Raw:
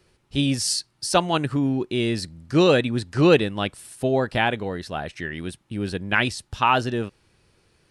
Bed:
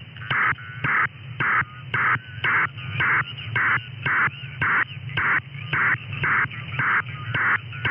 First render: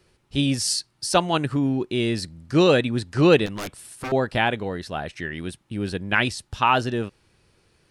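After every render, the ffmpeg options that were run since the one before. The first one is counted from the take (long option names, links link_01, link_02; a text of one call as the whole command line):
ffmpeg -i in.wav -filter_complex "[0:a]asettb=1/sr,asplit=3[link_01][link_02][link_03];[link_01]atrim=end=3.464[link_04];[link_02]atrim=start=3.46:end=4.12,asetpts=PTS-STARTPTS,afade=type=in:duration=0.004:curve=qsin,afade=type=out:start_time=0.656:duration=0.004:curve=qsin,aeval=exprs='0.0562*(abs(mod(val(0)/0.0562+3,4)-2)-1)':channel_layout=same[link_05];[link_03]atrim=start=4.116[link_06];[link_04][link_05]acrossfade=duration=0.004:curve1=hsin:curve2=qsin[link_07];[link_07][link_06]acrossfade=duration=0.004:curve1=qsin:curve2=hsin" out.wav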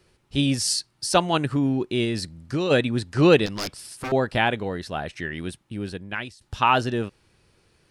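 ffmpeg -i in.wav -filter_complex "[0:a]asplit=3[link_01][link_02][link_03];[link_01]afade=type=out:start_time=2.04:duration=0.02[link_04];[link_02]acompressor=threshold=-21dB:ratio=6:attack=3.2:release=140:knee=1:detection=peak,afade=type=in:start_time=2.04:duration=0.02,afade=type=out:start_time=2.7:duration=0.02[link_05];[link_03]afade=type=in:start_time=2.7:duration=0.02[link_06];[link_04][link_05][link_06]amix=inputs=3:normalize=0,asettb=1/sr,asplit=3[link_07][link_08][link_09];[link_07]atrim=end=3.434[link_10];[link_08]atrim=start=3.43:end=3.97,asetpts=PTS-STARTPTS,afade=type=in:duration=0.004:curve=qsin,afade=type=out:start_time=0.536:duration=0.004:curve=qsin,equalizer=frequency=5000:width=3:gain=13.5[link_11];[link_09]atrim=start=3.966[link_12];[link_10][link_11]acrossfade=duration=0.004:curve1=hsin:curve2=qsin[link_13];[link_13][link_12]acrossfade=duration=0.004:curve1=qsin:curve2=hsin,asplit=2[link_14][link_15];[link_14]atrim=end=6.41,asetpts=PTS-STARTPTS,afade=type=out:start_time=5.49:duration=0.92:silence=0.0794328[link_16];[link_15]atrim=start=6.41,asetpts=PTS-STARTPTS,afade=type=in:duration=0.004:curve=hsin:silence=0.0794328[link_17];[link_16][link_17]concat=n=2:v=0:a=1" out.wav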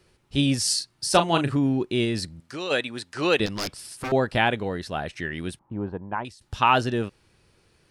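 ffmpeg -i in.wav -filter_complex "[0:a]asettb=1/sr,asplit=3[link_01][link_02][link_03];[link_01]atrim=end=0.764[link_04];[link_02]atrim=start=0.76:end=1.55,asetpts=PTS-STARTPTS,afade=type=in:duration=0.004:curve=qsin,afade=type=out:start_time=0.786:duration=0.004:curve=qsin,asplit=2[link_05][link_06];[link_06]adelay=36,volume=-8.5dB[link_07];[link_05][link_07]amix=inputs=2:normalize=0,atrim=end_sample=34839[link_08];[link_03]atrim=start=1.546[link_09];[link_04][link_08]acrossfade=duration=0.004:curve1=hsin:curve2=qsin[link_10];[link_10][link_09]acrossfade=duration=0.004:curve1=qsin:curve2=hsin,asettb=1/sr,asplit=3[link_11][link_12][link_13];[link_11]atrim=end=2.404[link_14];[link_12]atrim=start=2.4:end=3.4,asetpts=PTS-STARTPTS,afade=type=in:duration=0.004:curve=qsin,afade=type=out:start_time=0.996:duration=0.004:curve=qsin,highpass=frequency=850:poles=1[link_15];[link_13]atrim=start=3.396[link_16];[link_14][link_15]acrossfade=duration=0.004:curve1=hsin:curve2=qsin[link_17];[link_17][link_16]acrossfade=duration=0.004:curve1=qsin:curve2=hsin,asettb=1/sr,asplit=3[link_18][link_19][link_20];[link_18]atrim=end=5.594[link_21];[link_19]atrim=start=5.59:end=6.25,asetpts=PTS-STARTPTS,afade=type=in:duration=0.004:curve=qsin,afade=type=out:start_time=0.656:duration=0.004:curve=qsin,lowpass=frequency=940:width_type=q:width=4.7[link_22];[link_20]atrim=start=6.246[link_23];[link_21][link_22]acrossfade=duration=0.004:curve1=hsin:curve2=qsin[link_24];[link_24][link_23]acrossfade=duration=0.004:curve1=qsin:curve2=hsin" out.wav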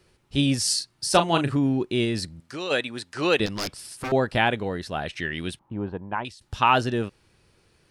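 ffmpeg -i in.wav -filter_complex "[0:a]asettb=1/sr,asplit=3[link_01][link_02][link_03];[link_01]atrim=end=5.014[link_04];[link_02]atrim=start=5.01:end=6.4,asetpts=PTS-STARTPTS,afade=type=in:duration=0.004:curve=qsin,afade=type=out:start_time=1.386:duration=0.004:curve=qsin,equalizer=frequency=3200:width=1.2:gain=6.5[link_05];[link_03]atrim=start=6.396[link_06];[link_04][link_05]acrossfade=duration=0.004:curve1=hsin:curve2=qsin[link_07];[link_07][link_06]acrossfade=duration=0.004:curve1=qsin:curve2=hsin" out.wav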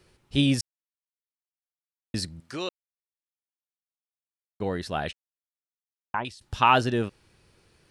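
ffmpeg -i in.wav -filter_complex "[0:a]asplit=7[link_01][link_02][link_03][link_04][link_05][link_06][link_07];[link_01]atrim=end=0.61,asetpts=PTS-STARTPTS,afade=type=out:start_time=0.606:duration=0.004:curve=hsin[link_08];[link_02]atrim=start=0.61:end=2.14,asetpts=PTS-STARTPTS,volume=0[link_09];[link_03]atrim=start=2.14:end=2.69,asetpts=PTS-STARTPTS,afade=type=in:duration=0.004:curve=hsin,afade=type=out:start_time=0.546:duration=0.004:curve=hsin[link_10];[link_04]atrim=start=2.69:end=4.6,asetpts=PTS-STARTPTS,volume=0[link_11];[link_05]atrim=start=4.6:end=5.13,asetpts=PTS-STARTPTS,afade=type=in:duration=0.004:curve=hsin,afade=type=out:start_time=0.526:duration=0.004:curve=hsin[link_12];[link_06]atrim=start=5.13:end=6.14,asetpts=PTS-STARTPTS,volume=0[link_13];[link_07]atrim=start=6.14,asetpts=PTS-STARTPTS,afade=type=in:duration=0.004:curve=hsin[link_14];[link_08][link_09][link_10][link_11][link_12][link_13][link_14]concat=n=7:v=0:a=1" out.wav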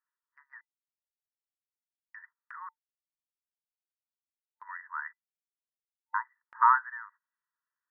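ffmpeg -i in.wav -af "afftfilt=real='re*between(b*sr/4096,900,2000)':imag='im*between(b*sr/4096,900,2000)':win_size=4096:overlap=0.75,agate=range=-22dB:threshold=-56dB:ratio=16:detection=peak" out.wav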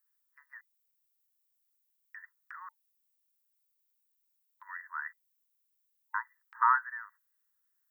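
ffmpeg -i in.wav -af "highpass=1200,aemphasis=mode=production:type=bsi" out.wav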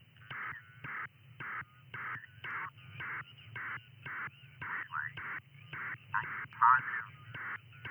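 ffmpeg -i in.wav -i bed.wav -filter_complex "[1:a]volume=-21dB[link_01];[0:a][link_01]amix=inputs=2:normalize=0" out.wav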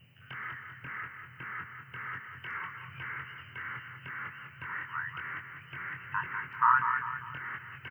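ffmpeg -i in.wav -filter_complex "[0:a]asplit=2[link_01][link_02];[link_02]adelay=23,volume=-4dB[link_03];[link_01][link_03]amix=inputs=2:normalize=0,aecho=1:1:197|394|591|788|985:0.422|0.181|0.078|0.0335|0.0144" out.wav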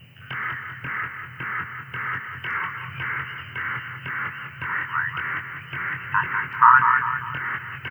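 ffmpeg -i in.wav -af "volume=11.5dB,alimiter=limit=-2dB:level=0:latency=1" out.wav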